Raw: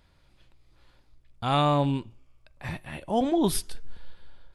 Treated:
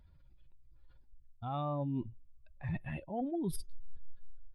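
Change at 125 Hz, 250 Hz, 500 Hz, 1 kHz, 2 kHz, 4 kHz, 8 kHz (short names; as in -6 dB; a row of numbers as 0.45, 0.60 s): -8.5, -10.5, -13.0, -14.0, -12.0, -22.5, -16.0 dB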